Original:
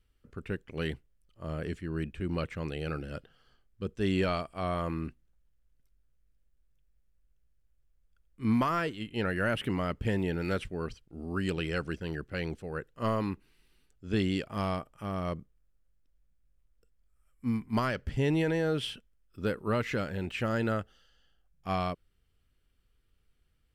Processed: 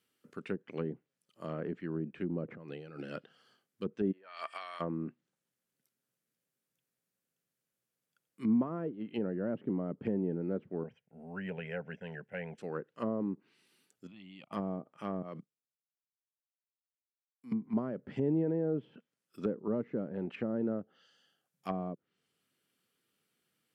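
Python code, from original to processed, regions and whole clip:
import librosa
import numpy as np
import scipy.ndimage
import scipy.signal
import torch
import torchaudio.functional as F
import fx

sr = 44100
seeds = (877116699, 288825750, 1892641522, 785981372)

y = fx.chain(x, sr, fx.highpass(hz=41.0, slope=6),
    fx.tilt_eq(slope=-2.0),
    fx.over_compress(threshold_db=-38.0, ratio=-0.5), at=(2.48, 2.99))
y = fx.highpass(y, sr, hz=1400.0, slope=12, at=(4.11, 4.79), fade=0.02)
y = fx.over_compress(y, sr, threshold_db=-50.0, ratio=-1.0, at=(4.11, 4.79), fade=0.02)
y = fx.dmg_tone(y, sr, hz=1800.0, level_db=-63.0, at=(4.11, 4.79), fade=0.02)
y = fx.chain(y, sr, fx.lowpass(hz=1900.0, slope=6),
    fx.fixed_phaser(hz=1200.0, stages=6), at=(10.83, 12.58))
y = fx.chain(y, sr, fx.lowpass(hz=3800.0, slope=12),
    fx.level_steps(step_db=23),
    fx.fixed_phaser(hz=1600.0, stages=6), at=(14.07, 14.53))
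y = fx.chain(y, sr, fx.highpass(hz=100.0, slope=6),
    fx.level_steps(step_db=23),
    fx.band_widen(depth_pct=100), at=(15.22, 17.52))
y = scipy.signal.sosfilt(scipy.signal.butter(4, 170.0, 'highpass', fs=sr, output='sos'), y)
y = fx.env_lowpass_down(y, sr, base_hz=460.0, full_db=-30.5)
y = fx.high_shelf(y, sr, hz=6500.0, db=7.5)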